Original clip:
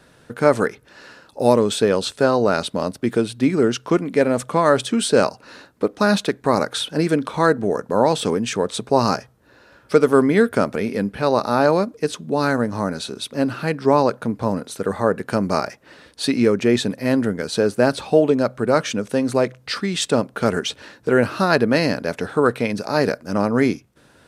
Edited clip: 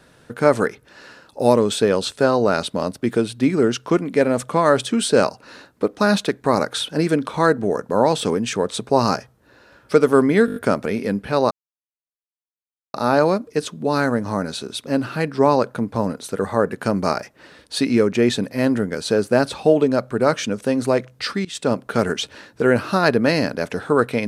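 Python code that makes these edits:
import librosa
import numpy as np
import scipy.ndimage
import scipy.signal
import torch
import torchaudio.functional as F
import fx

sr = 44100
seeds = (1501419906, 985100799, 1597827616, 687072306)

y = fx.edit(x, sr, fx.stutter(start_s=10.46, slice_s=0.02, count=6),
    fx.insert_silence(at_s=11.41, length_s=1.43),
    fx.fade_in_from(start_s=19.92, length_s=0.29, floor_db=-21.0), tone=tone)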